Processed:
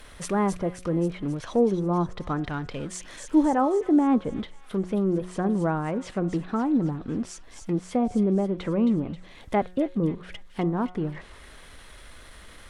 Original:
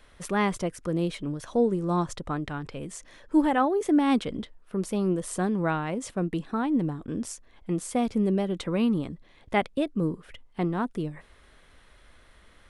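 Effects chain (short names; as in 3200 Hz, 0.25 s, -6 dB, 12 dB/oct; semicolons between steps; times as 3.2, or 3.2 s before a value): G.711 law mismatch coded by mu; treble ducked by the level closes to 1100 Hz, closed at -23 dBFS; high shelf 8000 Hz +8.5 dB; de-hum 181.7 Hz, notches 11; on a send: thin delay 0.267 s, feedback 57%, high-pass 2900 Hz, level -5.5 dB; on the sum: gain +1.5 dB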